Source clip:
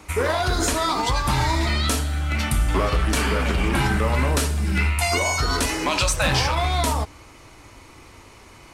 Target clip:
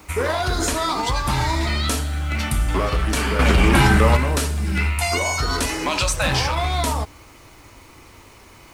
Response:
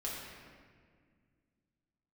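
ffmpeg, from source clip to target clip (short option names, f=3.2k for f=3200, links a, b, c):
-filter_complex "[0:a]asettb=1/sr,asplit=3[a][b][c];[a]atrim=end=3.394[d];[b]atrim=start=3.39:end=4.17,asetpts=PTS-STARTPTS,afade=t=in:d=0.004:c=qsin,afade=t=out:st=0.776:d=0.004:c=qsin,acontrast=84[e];[c]atrim=start=4.166[f];[d][e]acrossfade=d=0.004:c1=hsin:c2=qsin[g];[g][f]acrossfade=d=0.004:c1=qsin:c2=hsin,acrusher=bits=8:mix=0:aa=0.000001"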